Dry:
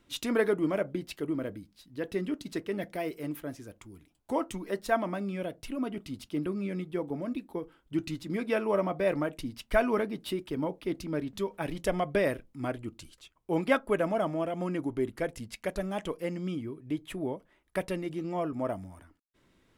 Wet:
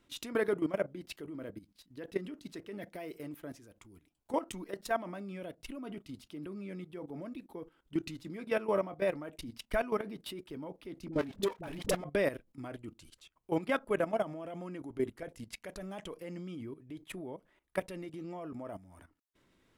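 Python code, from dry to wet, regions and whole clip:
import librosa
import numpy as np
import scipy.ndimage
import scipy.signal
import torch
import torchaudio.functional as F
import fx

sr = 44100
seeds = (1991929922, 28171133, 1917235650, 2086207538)

y = fx.chain(x, sr, fx.level_steps(step_db=10),
    fx.leveller(passes=3),
    fx.dispersion(late='highs', ms=51.0, hz=460.0), at=(11.08, 12.04))
y = fx.low_shelf(y, sr, hz=180.0, db=-2.5)
y = fx.level_steps(y, sr, step_db=14)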